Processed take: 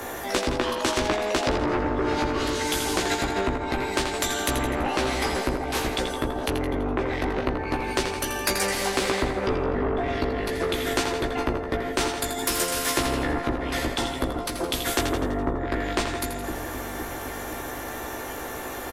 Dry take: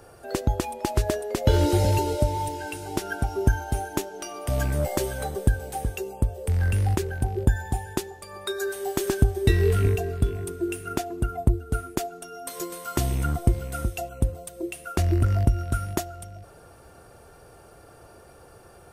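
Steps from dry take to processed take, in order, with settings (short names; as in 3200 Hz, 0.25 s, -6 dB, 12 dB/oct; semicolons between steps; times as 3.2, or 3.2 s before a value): octaver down 1 oct, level 0 dB; formant shift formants +4 st; in parallel at 0 dB: limiter -14.5 dBFS, peak gain reduction 10 dB; on the sum: treble ducked by the level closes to 610 Hz, closed at -10 dBFS; resonant low shelf 220 Hz -8.5 dB, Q 3; soft clip -11 dBFS, distortion -16 dB; doubler 16 ms -4 dB; on a send: split-band echo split 410 Hz, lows 0.511 s, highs 83 ms, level -9.5 dB; on the sum: spectral compressor 2:1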